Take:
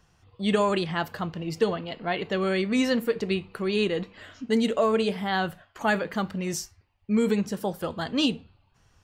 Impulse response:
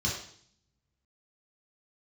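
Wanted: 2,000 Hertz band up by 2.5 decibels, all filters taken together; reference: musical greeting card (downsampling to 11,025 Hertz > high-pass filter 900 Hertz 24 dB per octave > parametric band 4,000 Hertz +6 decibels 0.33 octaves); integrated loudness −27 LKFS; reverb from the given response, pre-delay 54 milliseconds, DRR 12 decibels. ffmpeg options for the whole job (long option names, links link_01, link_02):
-filter_complex "[0:a]equalizer=frequency=2000:width_type=o:gain=3,asplit=2[link_01][link_02];[1:a]atrim=start_sample=2205,adelay=54[link_03];[link_02][link_03]afir=irnorm=-1:irlink=0,volume=-19dB[link_04];[link_01][link_04]amix=inputs=2:normalize=0,aresample=11025,aresample=44100,highpass=frequency=900:width=0.5412,highpass=frequency=900:width=1.3066,equalizer=frequency=4000:width_type=o:width=0.33:gain=6,volume=4dB"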